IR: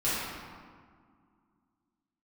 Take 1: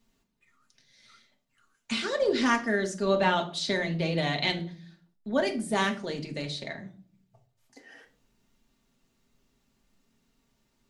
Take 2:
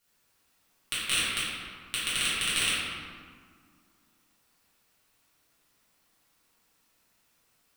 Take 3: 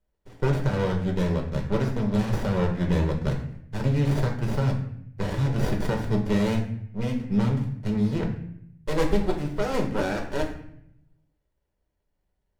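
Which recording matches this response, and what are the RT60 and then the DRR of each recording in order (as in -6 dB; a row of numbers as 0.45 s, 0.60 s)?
2; 0.50 s, 2.0 s, 0.70 s; 3.0 dB, -12.0 dB, 1.0 dB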